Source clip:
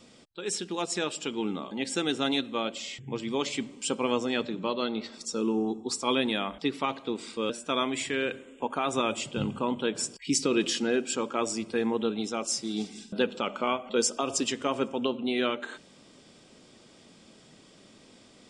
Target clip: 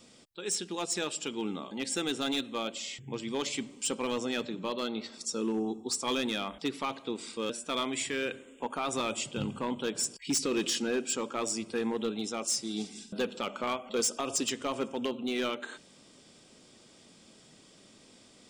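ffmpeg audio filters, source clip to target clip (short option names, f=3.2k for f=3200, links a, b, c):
-af "highshelf=f=5.7k:g=8,asoftclip=type=hard:threshold=-20.5dB,volume=-3.5dB"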